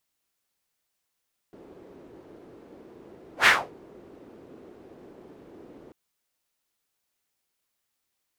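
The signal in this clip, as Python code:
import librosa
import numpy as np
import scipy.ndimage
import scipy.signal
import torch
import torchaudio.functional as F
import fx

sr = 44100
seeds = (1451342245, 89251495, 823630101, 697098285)

y = fx.whoosh(sr, seeds[0], length_s=4.39, peak_s=1.93, rise_s=0.11, fall_s=0.28, ends_hz=360.0, peak_hz=2000.0, q=2.3, swell_db=32.5)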